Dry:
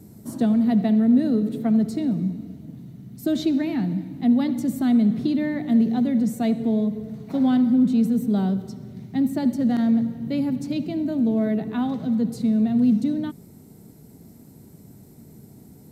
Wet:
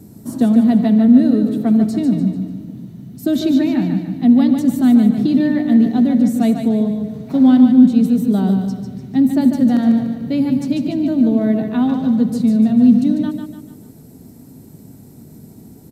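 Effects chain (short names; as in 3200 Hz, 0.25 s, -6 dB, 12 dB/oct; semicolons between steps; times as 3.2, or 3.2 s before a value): bell 260 Hz +5 dB 0.26 oct; notch 2100 Hz, Q 19; feedback echo 0.147 s, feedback 43%, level -6.5 dB; gain +4.5 dB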